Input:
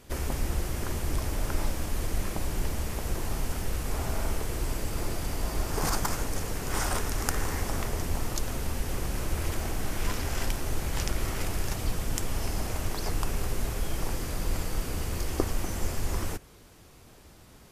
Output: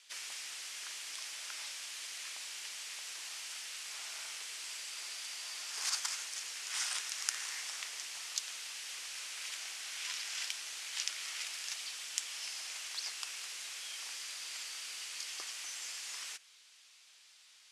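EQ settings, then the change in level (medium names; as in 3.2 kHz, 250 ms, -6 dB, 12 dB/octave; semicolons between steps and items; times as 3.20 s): Butterworth band-pass 5.9 kHz, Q 0.68; distance through air 57 m; +4.0 dB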